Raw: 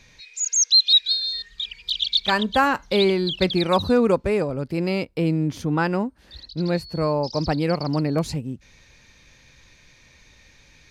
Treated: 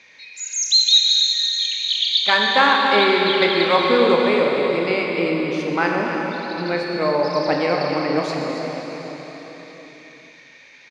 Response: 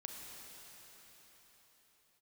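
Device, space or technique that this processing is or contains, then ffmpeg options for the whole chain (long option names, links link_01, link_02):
station announcement: -filter_complex "[0:a]highpass=340,lowpass=4800,equalizer=frequency=2100:width_type=o:width=0.46:gain=7,aecho=1:1:29.15|279.9:0.282|0.316[link_01];[1:a]atrim=start_sample=2205[link_02];[link_01][link_02]afir=irnorm=-1:irlink=0,volume=7.5dB"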